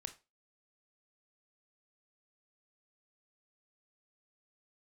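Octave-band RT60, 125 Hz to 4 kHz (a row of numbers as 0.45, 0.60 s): 0.25, 0.30, 0.30, 0.25, 0.25, 0.25 s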